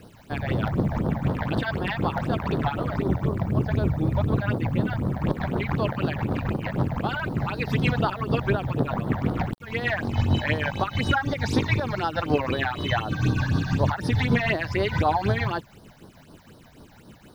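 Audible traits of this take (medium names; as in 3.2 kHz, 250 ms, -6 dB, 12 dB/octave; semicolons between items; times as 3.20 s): tremolo triangle 6.5 Hz, depth 50%; a quantiser's noise floor 10-bit, dither none; phasing stages 8, 4 Hz, lowest notch 330–2500 Hz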